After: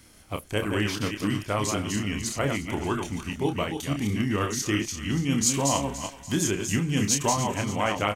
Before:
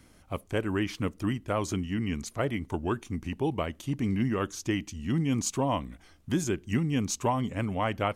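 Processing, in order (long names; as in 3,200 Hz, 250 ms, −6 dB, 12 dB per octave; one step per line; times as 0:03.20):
delay that plays each chunk backwards 164 ms, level −5 dB
high-shelf EQ 2,200 Hz +9 dB
double-tracking delay 29 ms −6.5 dB
feedback echo with a high-pass in the loop 289 ms, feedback 54%, high-pass 860 Hz, level −12 dB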